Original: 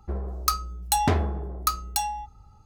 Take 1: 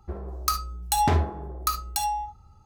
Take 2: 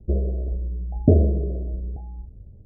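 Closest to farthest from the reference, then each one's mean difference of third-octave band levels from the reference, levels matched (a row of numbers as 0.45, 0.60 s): 1, 2; 2.0, 11.5 dB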